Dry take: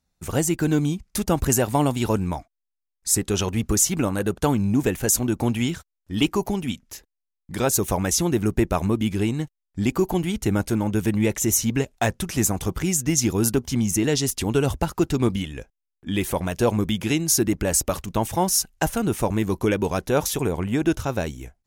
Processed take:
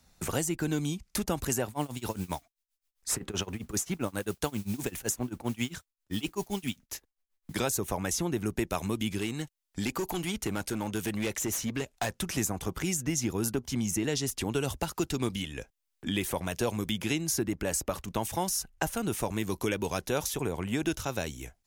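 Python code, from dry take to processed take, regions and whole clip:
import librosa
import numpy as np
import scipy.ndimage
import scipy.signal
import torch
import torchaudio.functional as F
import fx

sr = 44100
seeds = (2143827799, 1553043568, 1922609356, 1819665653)

y = fx.chain(x, sr, fx.tremolo(hz=7.6, depth=0.96),
    fx.mod_noise(seeds[0], snr_db=26), at=(1.68, 7.56))
y = fx.chain(y, sr, fx.low_shelf(hz=360.0, db=-5.5),
    fx.clip_hard(threshold_db=-21.0), at=(9.18, 12.21))
y = fx.low_shelf(y, sr, hz=480.0, db=-3.5)
y = fx.band_squash(y, sr, depth_pct=70)
y = y * 10.0 ** (-6.5 / 20.0)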